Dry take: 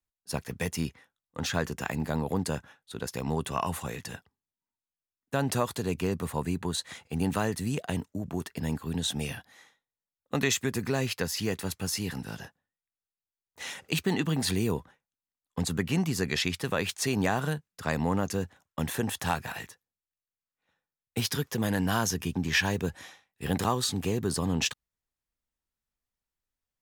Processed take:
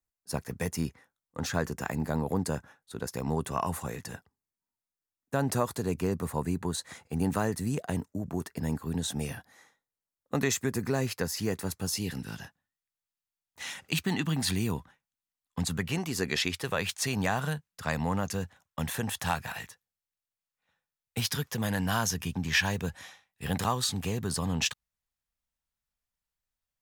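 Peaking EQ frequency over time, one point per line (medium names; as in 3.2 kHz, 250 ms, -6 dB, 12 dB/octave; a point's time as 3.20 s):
peaking EQ -8 dB 0.94 oct
11.74 s 3.1 kHz
12.41 s 450 Hz
15.63 s 450 Hz
16.35 s 93 Hz
16.83 s 340 Hz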